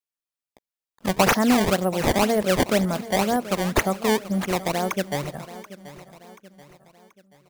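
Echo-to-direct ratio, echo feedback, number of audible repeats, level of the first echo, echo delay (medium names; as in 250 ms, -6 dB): -15.0 dB, 45%, 3, -16.0 dB, 732 ms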